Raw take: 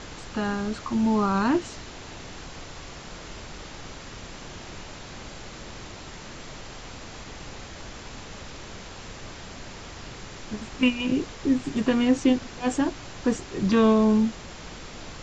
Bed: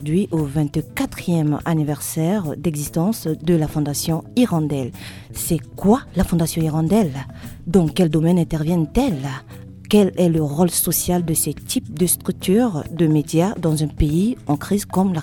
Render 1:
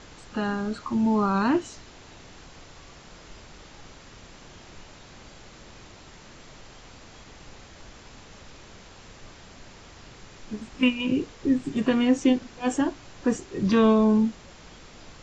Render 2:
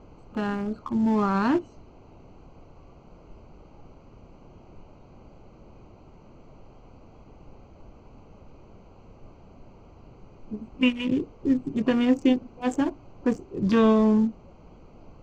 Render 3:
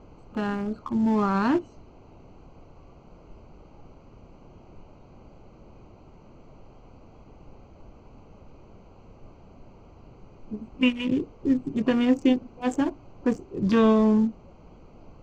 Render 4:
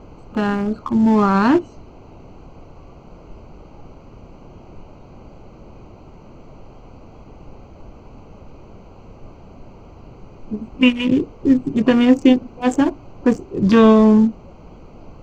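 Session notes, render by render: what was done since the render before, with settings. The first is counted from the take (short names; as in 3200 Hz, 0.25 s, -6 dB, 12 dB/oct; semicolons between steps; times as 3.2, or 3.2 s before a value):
noise print and reduce 7 dB
Wiener smoothing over 25 samples; notch 3900 Hz, Q 21
nothing audible
gain +8.5 dB; limiter -2 dBFS, peak gain reduction 1 dB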